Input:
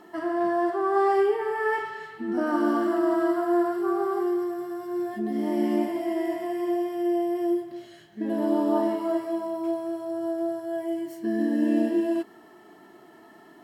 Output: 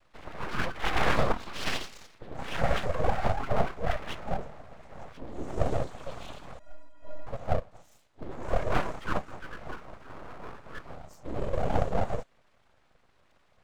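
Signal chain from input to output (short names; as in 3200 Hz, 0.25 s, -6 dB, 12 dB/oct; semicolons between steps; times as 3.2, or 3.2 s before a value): noise vocoder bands 6; spectral noise reduction 13 dB; full-wave rectifier; 6.59–7.27 metallic resonator 290 Hz, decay 0.28 s, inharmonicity 0.03; gain +1 dB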